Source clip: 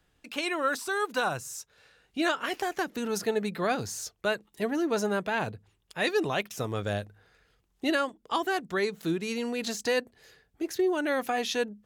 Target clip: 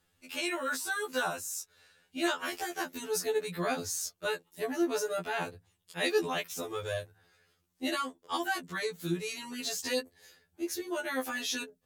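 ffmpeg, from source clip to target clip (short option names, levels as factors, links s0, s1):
-af "aemphasis=mode=production:type=cd,afftfilt=real='re*2*eq(mod(b,4),0)':imag='im*2*eq(mod(b,4),0)':win_size=2048:overlap=0.75,volume=0.794"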